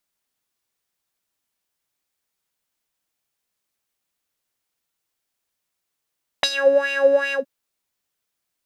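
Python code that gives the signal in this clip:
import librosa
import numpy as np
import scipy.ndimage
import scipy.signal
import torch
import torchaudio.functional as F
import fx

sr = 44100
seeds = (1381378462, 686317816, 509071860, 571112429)

y = fx.sub_patch_wobble(sr, seeds[0], note=73, wave='square', wave2='saw', interval_st=0, level2_db=-9.0, sub_db=-9.0, noise_db=-30.0, kind='bandpass', cutoff_hz=310.0, q=4.1, env_oct=3.5, env_decay_s=0.15, env_sustain_pct=50, attack_ms=2.6, decay_s=0.06, sustain_db=-10.0, release_s=0.12, note_s=0.9, lfo_hz=2.6, wobble_oct=1.3)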